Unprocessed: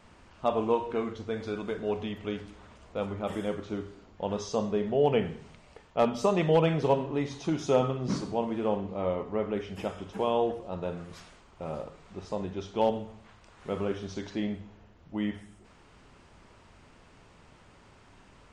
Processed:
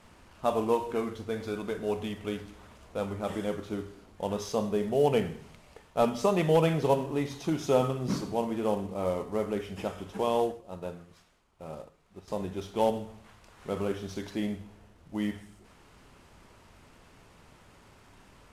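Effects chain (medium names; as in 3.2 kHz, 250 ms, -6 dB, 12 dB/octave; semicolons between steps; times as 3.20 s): CVSD coder 64 kbps; 10.42–12.28 s: upward expansion 1.5:1, over -51 dBFS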